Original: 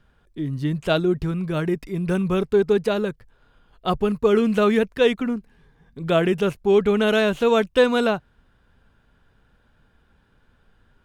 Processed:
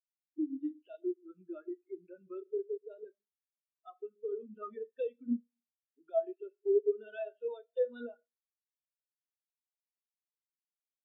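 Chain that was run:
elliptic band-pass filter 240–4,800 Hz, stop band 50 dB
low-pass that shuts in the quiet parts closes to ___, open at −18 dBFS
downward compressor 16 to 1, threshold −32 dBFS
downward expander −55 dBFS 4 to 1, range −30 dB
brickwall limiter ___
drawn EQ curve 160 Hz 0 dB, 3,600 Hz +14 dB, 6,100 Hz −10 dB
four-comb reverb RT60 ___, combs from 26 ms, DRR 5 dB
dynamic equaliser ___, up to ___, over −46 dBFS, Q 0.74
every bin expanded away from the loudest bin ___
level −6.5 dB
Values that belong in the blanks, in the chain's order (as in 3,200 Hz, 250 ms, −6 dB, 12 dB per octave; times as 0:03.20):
2,500 Hz, −26 dBFS, 1.1 s, 3,600 Hz, +3 dB, 4 to 1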